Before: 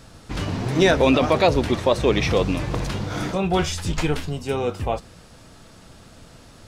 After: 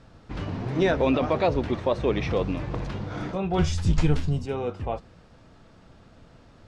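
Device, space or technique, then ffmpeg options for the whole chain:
through cloth: -filter_complex "[0:a]asettb=1/sr,asplit=3[a][b][c];[a]atrim=end=3.584[d];[b]atrim=start=3.58:end=4.46,asetpts=PTS-STARTPTS,afade=t=in:d=0.004:c=qsin,afade=t=out:st=0.876:d=0.004:c=qsin,bass=f=250:g=10,treble=f=4k:g=11[e];[c]atrim=start=4.456[f];[d][e]acrossfade=d=0.004:c1=hsin:c2=qsin[g];[g][f]acrossfade=d=0.004:c1=qsin:c2=hsin,lowpass=6.9k,highshelf=f=3.5k:g=-12,volume=-5dB"

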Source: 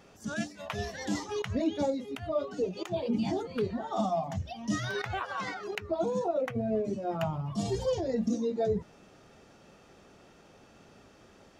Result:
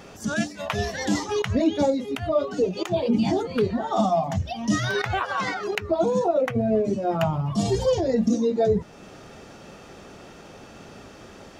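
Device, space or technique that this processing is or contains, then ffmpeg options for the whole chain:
parallel compression: -filter_complex "[0:a]asplit=2[a][b];[b]acompressor=threshold=-44dB:ratio=6,volume=-1.5dB[c];[a][c]amix=inputs=2:normalize=0,volume=7dB"

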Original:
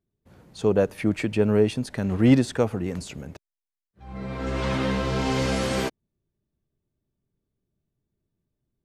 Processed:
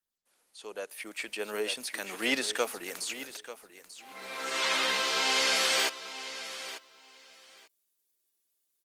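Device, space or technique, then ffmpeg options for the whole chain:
video call: -filter_complex "[0:a]acrossover=split=4700[a][b];[b]acompressor=threshold=-51dB:ratio=4:attack=1:release=60[c];[a][c]amix=inputs=2:normalize=0,highpass=170,highpass=280,aderivative,aecho=1:1:890|1780:0.211|0.0359,dynaudnorm=f=560:g=5:m=14dB,volume=1.5dB" -ar 48000 -c:a libopus -b:a 24k

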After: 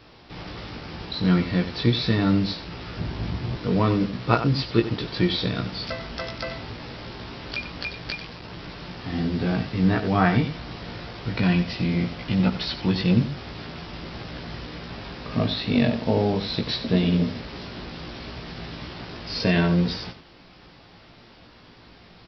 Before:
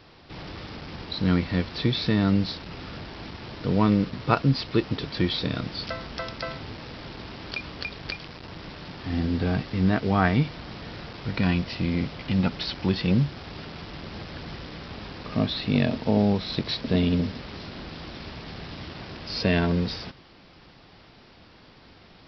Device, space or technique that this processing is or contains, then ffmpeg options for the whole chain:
slapback doubling: -filter_complex "[0:a]asplit=3[a][b][c];[b]adelay=17,volume=-3dB[d];[c]adelay=92,volume=-10dB[e];[a][d][e]amix=inputs=3:normalize=0,asettb=1/sr,asplit=3[f][g][h];[f]atrim=end=2.984[i];[g]atrim=start=2.98:end=3.57,asetpts=PTS-STARTPTS,afade=t=in:d=0.004:c=qsin,afade=t=out:st=0.586:d=0.004:c=qsin,equalizer=f=97:w=0.45:g=12[j];[h]atrim=start=3.566[k];[i][j]acrossfade=d=0.004:c1=hsin:c2=qsin[l];[l][k]acrossfade=d=0.004:c1=qsin:c2=hsin"

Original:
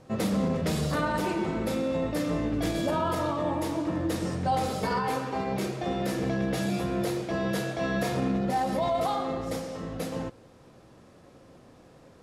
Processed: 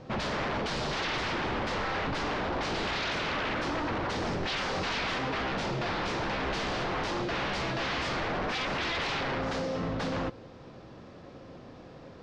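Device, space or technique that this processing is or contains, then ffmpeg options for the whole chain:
synthesiser wavefolder: -af "aeval=exprs='0.0251*(abs(mod(val(0)/0.0251+3,4)-2)-1)':c=same,lowpass=f=5.3k:w=0.5412,lowpass=f=5.3k:w=1.3066,volume=5.5dB"

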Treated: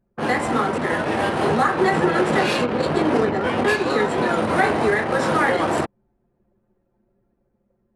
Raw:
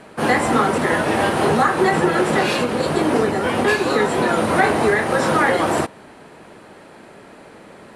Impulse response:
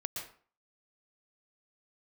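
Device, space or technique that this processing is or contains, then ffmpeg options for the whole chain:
voice memo with heavy noise removal: -af "anlmdn=398,dynaudnorm=f=440:g=7:m=11.5dB,volume=-4dB"

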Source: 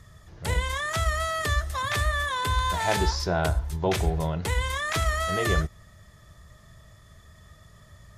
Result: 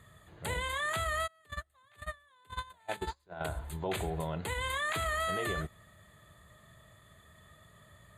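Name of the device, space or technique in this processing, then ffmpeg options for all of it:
PA system with an anti-feedback notch: -filter_complex "[0:a]asplit=3[a][b][c];[a]afade=t=out:st=1.26:d=0.02[d];[b]agate=range=-33dB:threshold=-21dB:ratio=16:detection=peak,afade=t=in:st=1.26:d=0.02,afade=t=out:st=3.4:d=0.02[e];[c]afade=t=in:st=3.4:d=0.02[f];[d][e][f]amix=inputs=3:normalize=0,highpass=f=180:p=1,asuperstop=centerf=5500:order=4:qfactor=2,alimiter=limit=-21.5dB:level=0:latency=1:release=149,volume=-2.5dB"

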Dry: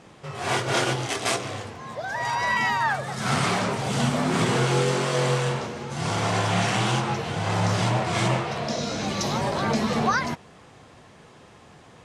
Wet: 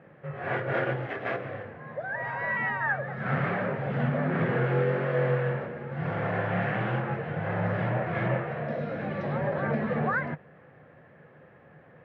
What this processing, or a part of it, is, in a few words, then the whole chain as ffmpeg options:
bass cabinet: -af "highpass=82,equalizer=f=150:t=q:w=4:g=8,equalizer=f=540:t=q:w=4:g=9,equalizer=f=990:t=q:w=4:g=-5,equalizer=f=1.7k:t=q:w=4:g=8,lowpass=f=2.2k:w=0.5412,lowpass=f=2.2k:w=1.3066,volume=-6.5dB"

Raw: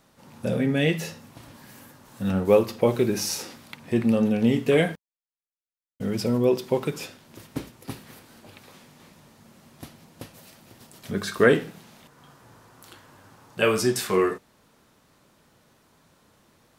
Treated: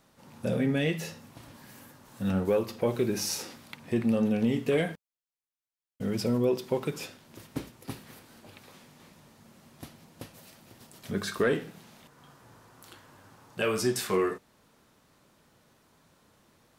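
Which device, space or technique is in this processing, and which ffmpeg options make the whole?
soft clipper into limiter: -af "asoftclip=type=tanh:threshold=-7dB,alimiter=limit=-13.5dB:level=0:latency=1:release=301,volume=-3dB"

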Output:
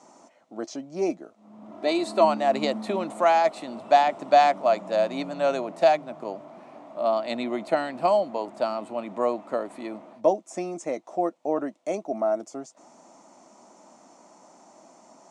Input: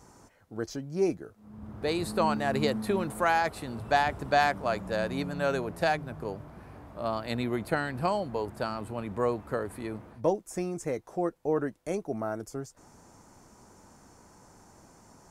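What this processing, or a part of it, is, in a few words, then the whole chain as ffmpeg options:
television speaker: -filter_complex "[0:a]highpass=f=230:w=0.5412,highpass=f=230:w=1.3066,equalizer=f=440:t=q:w=4:g=-9,equalizer=f=640:t=q:w=4:g=9,equalizer=f=1.6k:t=q:w=4:g=-10,equalizer=f=4.9k:t=q:w=4:g=-4,lowpass=f=7.6k:w=0.5412,lowpass=f=7.6k:w=1.3066,asettb=1/sr,asplit=3[a][b][c];[a]atrim=end=1.714[d];[b]atrim=start=1.71:end=2.25,asetpts=PTS-STARTPTS,afade=t=in:d=0.004:c=qsin,afade=t=out:st=0.536:d=0.004:c=qsin,aecho=1:1:3:0.65,atrim=end_sample=23814[e];[c]atrim=start=2.246[f];[d][e]acrossfade=d=0.004:c1=hsin:c2=qsin[g];[g][f]acrossfade=d=0.004:c1=qsin:c2=hsin,volume=4dB"

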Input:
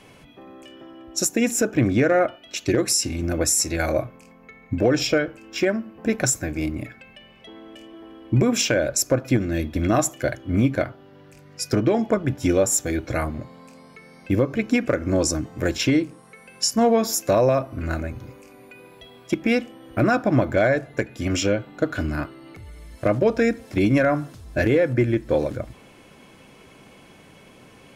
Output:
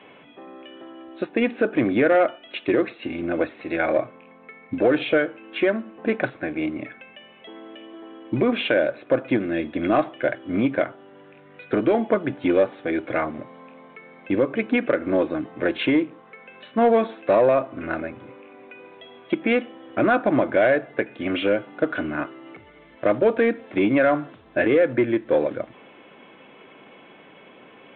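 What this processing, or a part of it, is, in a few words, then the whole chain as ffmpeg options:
telephone: -af "highpass=270,lowpass=3.4k,asoftclip=type=tanh:threshold=-11.5dB,volume=3dB" -ar 8000 -c:a pcm_mulaw

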